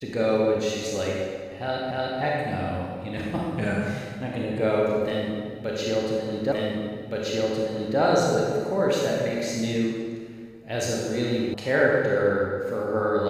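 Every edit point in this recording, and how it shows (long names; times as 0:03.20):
0:01.91: the same again, the last 0.3 s
0:06.52: the same again, the last 1.47 s
0:11.54: cut off before it has died away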